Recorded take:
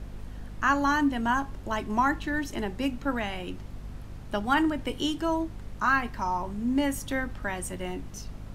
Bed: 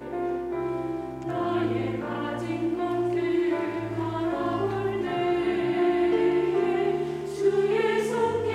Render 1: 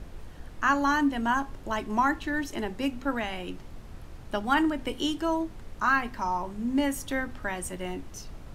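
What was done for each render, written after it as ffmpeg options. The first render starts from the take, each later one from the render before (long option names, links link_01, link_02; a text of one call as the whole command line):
ffmpeg -i in.wav -af "bandreject=frequency=50:width_type=h:width=6,bandreject=frequency=100:width_type=h:width=6,bandreject=frequency=150:width_type=h:width=6,bandreject=frequency=200:width_type=h:width=6,bandreject=frequency=250:width_type=h:width=6" out.wav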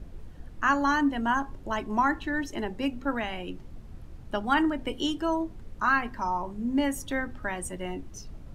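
ffmpeg -i in.wav -af "afftdn=noise_reduction=8:noise_floor=-45" out.wav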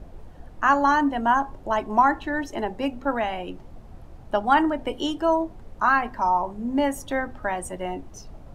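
ffmpeg -i in.wav -af "equalizer=frequency=730:width_type=o:width=1.3:gain=10" out.wav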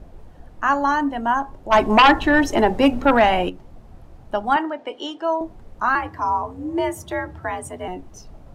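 ffmpeg -i in.wav -filter_complex "[0:a]asplit=3[link_01][link_02][link_03];[link_01]afade=type=out:start_time=1.71:duration=0.02[link_04];[link_02]aeval=exprs='0.447*sin(PI/2*2.51*val(0)/0.447)':channel_layout=same,afade=type=in:start_time=1.71:duration=0.02,afade=type=out:start_time=3.48:duration=0.02[link_05];[link_03]afade=type=in:start_time=3.48:duration=0.02[link_06];[link_04][link_05][link_06]amix=inputs=3:normalize=0,asettb=1/sr,asplit=3[link_07][link_08][link_09];[link_07]atrim=end=4.564[link_10];[link_08]atrim=start=4.56:end=5.41,asetpts=PTS-STARTPTS,afade=type=in:duration=0.004:curve=qsin,afade=type=out:start_time=0.846:duration=0.004:curve=qsin,highpass=380,lowpass=5400[link_11];[link_09]atrim=start=5.406[link_12];[link_10][link_11]acrossfade=duration=0.004:curve1=hsin:curve2=qsin[link_13];[link_13][link_12]acrossfade=duration=0.004:curve1=qsin:curve2=hsin,asettb=1/sr,asplit=3[link_14][link_15][link_16];[link_14]atrim=end=5.954[link_17];[link_15]atrim=start=5.95:end=7.88,asetpts=PTS-STARTPTS,afade=type=in:duration=0.004:curve=qsin,afade=type=out:start_time=1.926:duration=0.004:curve=qsin,afreqshift=66[link_18];[link_16]atrim=start=7.876[link_19];[link_17][link_18]acrossfade=duration=0.004:curve1=hsin:curve2=qsin[link_20];[link_20][link_19]acrossfade=duration=0.004:curve1=qsin:curve2=hsin" out.wav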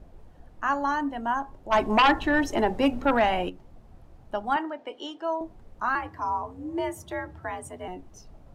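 ffmpeg -i in.wav -af "volume=-7dB" out.wav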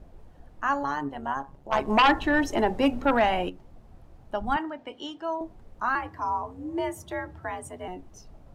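ffmpeg -i in.wav -filter_complex "[0:a]asettb=1/sr,asplit=3[link_01][link_02][link_03];[link_01]atrim=end=0.834[link_04];[link_02]atrim=start=0.83:end=1.88,asetpts=PTS-STARTPTS,afade=type=in:duration=0.004:curve=qsin,afade=type=out:start_time=1.046:duration=0.004:curve=qsin,tremolo=f=140:d=0.75[link_05];[link_03]atrim=start=1.876[link_06];[link_04][link_05]acrossfade=duration=0.004:curve1=hsin:curve2=qsin[link_07];[link_07][link_06]acrossfade=duration=0.004:curve1=qsin:curve2=hsin,asplit=3[link_08][link_09][link_10];[link_08]afade=type=out:start_time=4.4:duration=0.02[link_11];[link_09]asubboost=boost=6:cutoff=170,afade=type=in:start_time=4.4:duration=0.02,afade=type=out:start_time=5.38:duration=0.02[link_12];[link_10]afade=type=in:start_time=5.38:duration=0.02[link_13];[link_11][link_12][link_13]amix=inputs=3:normalize=0" out.wav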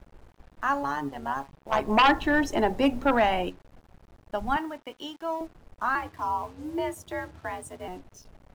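ffmpeg -i in.wav -filter_complex "[0:a]acrossover=split=2900[link_01][link_02];[link_01]aeval=exprs='sgn(val(0))*max(abs(val(0))-0.00237,0)':channel_layout=same[link_03];[link_03][link_02]amix=inputs=2:normalize=0,acrusher=bits=8:mix=0:aa=0.5" out.wav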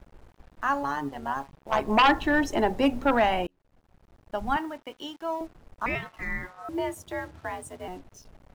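ffmpeg -i in.wav -filter_complex "[0:a]asettb=1/sr,asplit=3[link_01][link_02][link_03];[link_01]atrim=end=5.864[link_04];[link_02]atrim=start=5.86:end=6.69,asetpts=PTS-STARTPTS,afade=type=in:duration=0.004:curve=qsin,afade=type=out:start_time=0.826:duration=0.004:curve=qsin,aeval=exprs='val(0)*sin(2*PI*1000*n/s)':channel_layout=same[link_05];[link_03]atrim=start=6.686[link_06];[link_04][link_05]acrossfade=duration=0.004:curve1=hsin:curve2=qsin[link_07];[link_07][link_06]acrossfade=duration=0.004:curve1=qsin:curve2=hsin,asplit=2[link_08][link_09];[link_08]atrim=end=3.47,asetpts=PTS-STARTPTS,afade=type=out:start_time=3.466:duration=0.004:curve=hsin[link_10];[link_09]atrim=start=3.47,asetpts=PTS-STARTPTS,afade=type=in:duration=0.97[link_11];[link_10][link_11]concat=n=2:v=0:a=1" out.wav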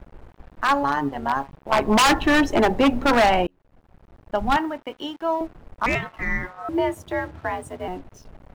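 ffmpeg -i in.wav -filter_complex "[0:a]asplit=2[link_01][link_02];[link_02]adynamicsmooth=sensitivity=3.5:basefreq=3900,volume=3dB[link_03];[link_01][link_03]amix=inputs=2:normalize=0,aeval=exprs='0.282*(abs(mod(val(0)/0.282+3,4)-2)-1)':channel_layout=same" out.wav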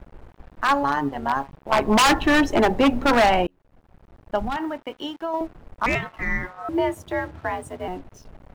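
ffmpeg -i in.wav -filter_complex "[0:a]asettb=1/sr,asplit=3[link_01][link_02][link_03];[link_01]atrim=end=4.414[link_04];[link_02]atrim=start=4.41:end=5.34,asetpts=PTS-STARTPTS,afade=type=in:duration=0.004:curve=qsin,afade=type=out:start_time=0.926:duration=0.004:curve=qsin,acompressor=threshold=-22dB:ratio=10:attack=3.2:release=140:knee=1:detection=peak[link_05];[link_03]atrim=start=5.336[link_06];[link_04][link_05]acrossfade=duration=0.004:curve1=hsin:curve2=qsin[link_07];[link_07][link_06]acrossfade=duration=0.004:curve1=qsin:curve2=hsin" out.wav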